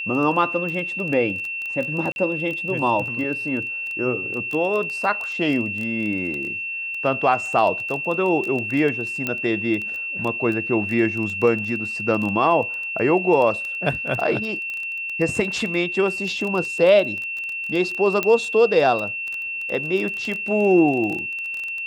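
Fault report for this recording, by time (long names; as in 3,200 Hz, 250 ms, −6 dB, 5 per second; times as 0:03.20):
surface crackle 13 per second −25 dBFS
whistle 2,700 Hz −26 dBFS
0:02.12–0:02.16: drop-out 41 ms
0:09.27: click −10 dBFS
0:18.23: click −8 dBFS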